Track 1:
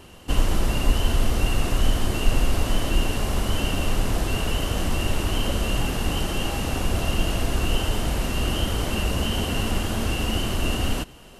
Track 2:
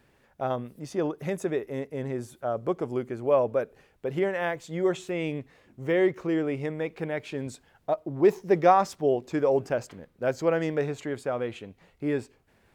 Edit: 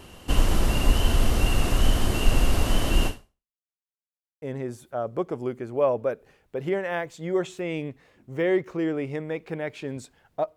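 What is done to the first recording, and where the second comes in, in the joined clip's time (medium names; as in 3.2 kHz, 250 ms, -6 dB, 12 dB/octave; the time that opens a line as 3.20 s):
track 1
3.07–3.55 s: fade out exponential
3.55–4.42 s: mute
4.42 s: go over to track 2 from 1.92 s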